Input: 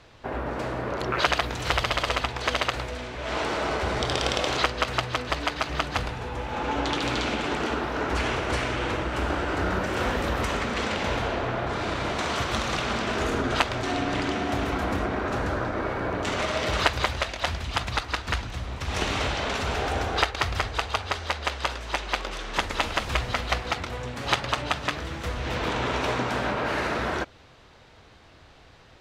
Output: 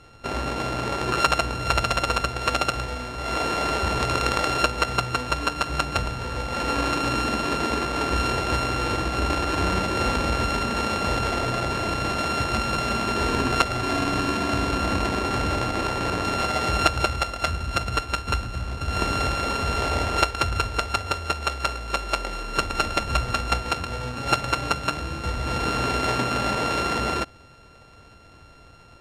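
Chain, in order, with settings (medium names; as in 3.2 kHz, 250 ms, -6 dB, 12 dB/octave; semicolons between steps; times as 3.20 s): sorted samples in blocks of 32 samples; distance through air 69 m; trim +3.5 dB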